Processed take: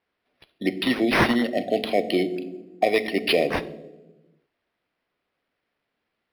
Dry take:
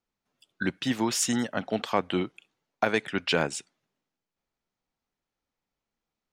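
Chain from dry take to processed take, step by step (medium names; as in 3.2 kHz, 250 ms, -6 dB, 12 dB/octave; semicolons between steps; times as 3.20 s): high-pass 320 Hz 12 dB/octave; peaking EQ 13 kHz +15 dB 0.37 oct; in parallel at -2 dB: peak limiter -20 dBFS, peak gain reduction 10 dB; on the sum: brick-wall FIR band-stop 770–1800 Hz; on a send at -10 dB: reverberation RT60 1.2 s, pre-delay 3 ms; on the sum: decimation joined by straight lines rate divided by 6×; trim +4.5 dB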